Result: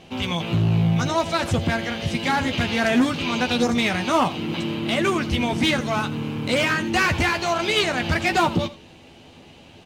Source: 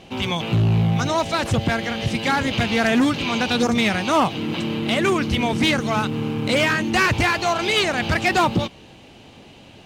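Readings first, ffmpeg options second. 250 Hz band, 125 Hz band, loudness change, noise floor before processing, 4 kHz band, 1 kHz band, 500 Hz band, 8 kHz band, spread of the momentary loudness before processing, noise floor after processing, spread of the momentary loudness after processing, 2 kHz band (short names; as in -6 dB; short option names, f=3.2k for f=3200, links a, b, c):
-1.5 dB, -1.5 dB, -1.5 dB, -46 dBFS, -1.5 dB, -1.5 dB, -1.5 dB, -1.5 dB, 6 LU, -47 dBFS, 6 LU, -1.5 dB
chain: -filter_complex "[0:a]asplit=2[a][b];[b]adelay=12,volume=-7dB[c];[a][c]amix=inputs=2:normalize=0,aecho=1:1:83:0.15,volume=-2.5dB"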